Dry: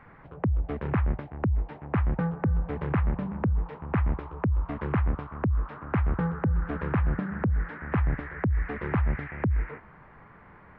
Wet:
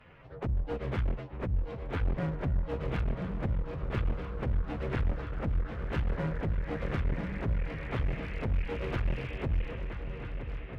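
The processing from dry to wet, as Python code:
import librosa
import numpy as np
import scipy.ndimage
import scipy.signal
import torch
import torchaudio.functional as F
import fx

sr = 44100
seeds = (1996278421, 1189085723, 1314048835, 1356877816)

y = fx.partial_stretch(x, sr, pct=113)
y = fx.graphic_eq_10(y, sr, hz=(250, 500, 1000), db=(-3, 5, -3))
y = fx.echo_swing(y, sr, ms=1296, ratio=3, feedback_pct=60, wet_db=-11)
y = fx.clip_asym(y, sr, top_db=-34.0, bottom_db=-19.0)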